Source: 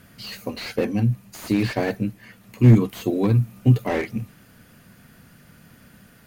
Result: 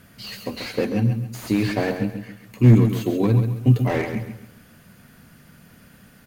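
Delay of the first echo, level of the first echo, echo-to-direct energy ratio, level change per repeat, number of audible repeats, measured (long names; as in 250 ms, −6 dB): 135 ms, −8.0 dB, −7.5 dB, −9.5 dB, 3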